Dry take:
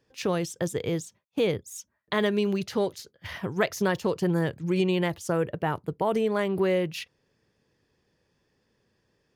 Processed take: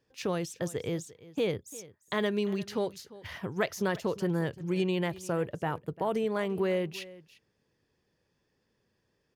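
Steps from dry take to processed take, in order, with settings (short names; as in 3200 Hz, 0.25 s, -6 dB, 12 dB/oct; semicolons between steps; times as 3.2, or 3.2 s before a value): echo 0.347 s -19 dB; gain -4.5 dB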